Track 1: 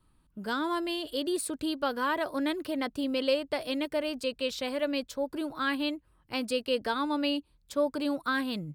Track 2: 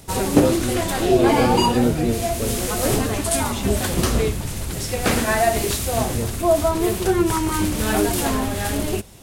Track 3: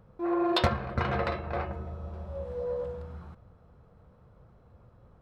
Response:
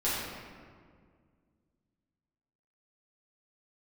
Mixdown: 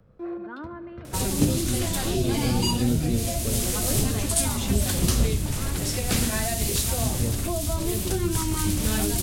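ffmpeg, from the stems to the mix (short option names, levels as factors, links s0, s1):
-filter_complex "[0:a]lowpass=f=1800:w=0.5412,lowpass=f=1800:w=1.3066,aecho=1:1:3.4:0.42,volume=0.355,asplit=3[s0][s1][s2];[s1]volume=0.0841[s3];[1:a]adelay=1050,volume=1[s4];[2:a]acrossover=split=430[s5][s6];[s6]acompressor=threshold=0.0158:ratio=6[s7];[s5][s7]amix=inputs=2:normalize=0,equalizer=f=920:t=o:w=0.63:g=-9,volume=1[s8];[s2]apad=whole_len=229965[s9];[s8][s9]sidechaincompress=threshold=0.00251:ratio=8:attack=5.6:release=333[s10];[3:a]atrim=start_sample=2205[s11];[s3][s11]afir=irnorm=-1:irlink=0[s12];[s0][s4][s10][s12]amix=inputs=4:normalize=0,acrossover=split=230|3000[s13][s14][s15];[s14]acompressor=threshold=0.0251:ratio=6[s16];[s13][s16][s15]amix=inputs=3:normalize=0"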